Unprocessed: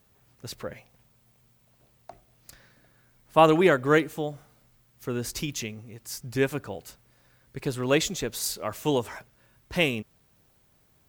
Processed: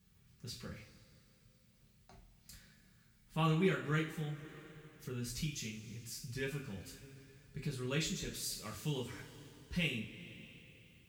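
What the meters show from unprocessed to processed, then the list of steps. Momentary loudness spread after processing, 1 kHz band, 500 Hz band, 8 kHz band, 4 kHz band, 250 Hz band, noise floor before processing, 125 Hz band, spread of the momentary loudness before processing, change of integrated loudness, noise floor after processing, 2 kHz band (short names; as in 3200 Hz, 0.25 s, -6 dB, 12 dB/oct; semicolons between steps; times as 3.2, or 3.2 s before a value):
21 LU, -17.5 dB, -17.0 dB, -10.0 dB, -9.5 dB, -11.0 dB, -64 dBFS, -5.0 dB, 20 LU, -13.0 dB, -68 dBFS, -12.0 dB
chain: HPF 43 Hz; passive tone stack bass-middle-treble 6-0-2; two-slope reverb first 0.35 s, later 3 s, from -21 dB, DRR -3 dB; in parallel at +2.5 dB: compressor, threshold -54 dBFS, peak gain reduction 23 dB; on the sum: high shelf 7500 Hz -8.5 dB; gain +1.5 dB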